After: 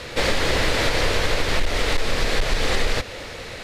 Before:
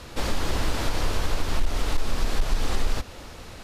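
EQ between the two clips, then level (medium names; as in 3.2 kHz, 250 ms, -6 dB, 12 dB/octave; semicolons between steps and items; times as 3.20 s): graphic EQ 125/500/2000/4000/8000 Hz +5/+11/+12/+7/+4 dB; 0.0 dB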